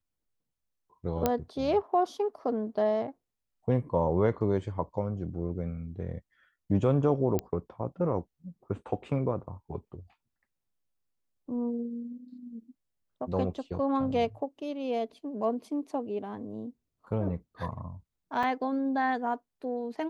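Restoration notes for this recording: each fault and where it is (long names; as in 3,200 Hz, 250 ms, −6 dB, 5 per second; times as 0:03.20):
0:01.26: click −11 dBFS
0:07.39: click −16 dBFS
0:18.43: drop-out 4.4 ms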